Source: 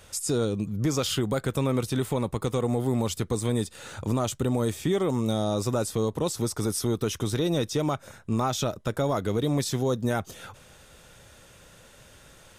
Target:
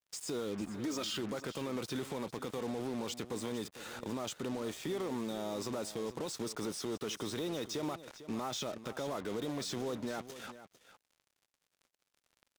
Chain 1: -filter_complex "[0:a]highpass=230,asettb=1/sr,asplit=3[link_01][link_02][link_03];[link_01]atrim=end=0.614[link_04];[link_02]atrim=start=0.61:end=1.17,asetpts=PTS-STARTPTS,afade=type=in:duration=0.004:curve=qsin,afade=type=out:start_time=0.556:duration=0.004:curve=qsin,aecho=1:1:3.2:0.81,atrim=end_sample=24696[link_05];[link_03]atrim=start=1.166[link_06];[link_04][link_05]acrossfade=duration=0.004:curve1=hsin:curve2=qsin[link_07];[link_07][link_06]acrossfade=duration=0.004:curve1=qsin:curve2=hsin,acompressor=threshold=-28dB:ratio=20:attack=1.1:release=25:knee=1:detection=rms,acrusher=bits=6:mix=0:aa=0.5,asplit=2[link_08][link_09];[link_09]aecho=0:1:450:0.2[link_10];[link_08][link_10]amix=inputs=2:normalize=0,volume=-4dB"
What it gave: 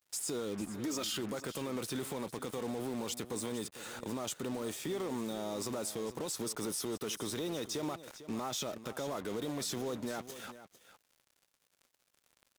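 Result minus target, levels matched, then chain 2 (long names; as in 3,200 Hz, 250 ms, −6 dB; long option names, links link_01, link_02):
8,000 Hz band +4.0 dB
-filter_complex "[0:a]highpass=230,asettb=1/sr,asplit=3[link_01][link_02][link_03];[link_01]atrim=end=0.614[link_04];[link_02]atrim=start=0.61:end=1.17,asetpts=PTS-STARTPTS,afade=type=in:duration=0.004:curve=qsin,afade=type=out:start_time=0.556:duration=0.004:curve=qsin,aecho=1:1:3.2:0.81,atrim=end_sample=24696[link_05];[link_03]atrim=start=1.166[link_06];[link_04][link_05]acrossfade=duration=0.004:curve1=hsin:curve2=qsin[link_07];[link_07][link_06]acrossfade=duration=0.004:curve1=qsin:curve2=hsin,acompressor=threshold=-28dB:ratio=20:attack=1.1:release=25:knee=1:detection=rms,lowpass=6100,acrusher=bits=6:mix=0:aa=0.5,asplit=2[link_08][link_09];[link_09]aecho=0:1:450:0.2[link_10];[link_08][link_10]amix=inputs=2:normalize=0,volume=-4dB"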